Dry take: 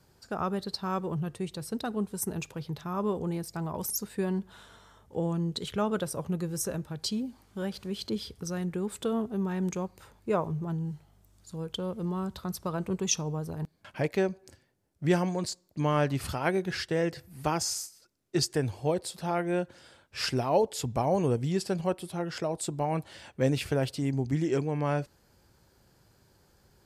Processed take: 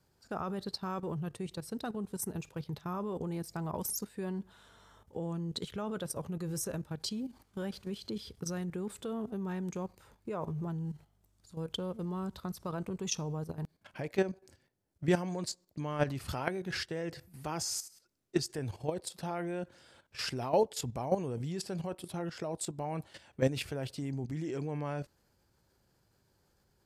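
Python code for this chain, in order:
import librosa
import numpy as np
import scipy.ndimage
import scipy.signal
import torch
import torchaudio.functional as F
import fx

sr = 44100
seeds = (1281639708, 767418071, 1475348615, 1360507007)

y = fx.level_steps(x, sr, step_db=12)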